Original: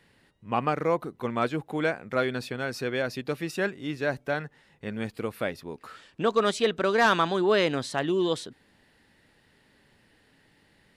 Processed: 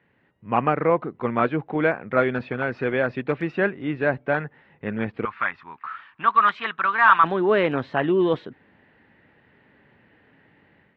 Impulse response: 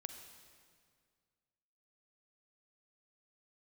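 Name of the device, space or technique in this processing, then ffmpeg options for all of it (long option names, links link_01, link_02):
action camera in a waterproof case: -filter_complex "[0:a]highpass=80,asettb=1/sr,asplit=3[link_01][link_02][link_03];[link_01]atrim=end=5.254[link_04];[link_02]atrim=start=5.25:end=7.24,asetpts=PTS-STARTPTS,afade=type=in:duration=0.004:curve=qsin,afade=type=out:start_time=1.986:duration=0.004:curve=qsin,lowshelf=frequency=740:width_type=q:width=3:gain=-13.5[link_05];[link_03]atrim=start=7.236[link_06];[link_04][link_05]acrossfade=duration=0.004:curve1=hsin:curve2=qsin[link_07];[link_07][link_06]acrossfade=duration=0.004:curve1=qsin:curve2=hsin,lowpass=frequency=2500:width=0.5412,lowpass=frequency=2500:width=1.3066,dynaudnorm=framelen=240:gausssize=3:maxgain=8dB,volume=-2dB" -ar 48000 -c:a aac -b:a 48k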